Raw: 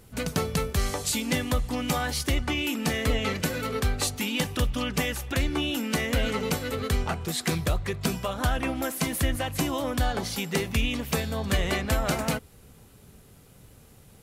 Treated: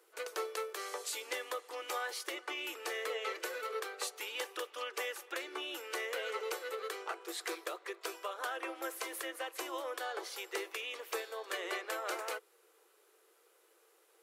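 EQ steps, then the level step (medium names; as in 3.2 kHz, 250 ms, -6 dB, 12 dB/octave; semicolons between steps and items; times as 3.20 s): rippled Chebyshev high-pass 330 Hz, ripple 6 dB; -6.0 dB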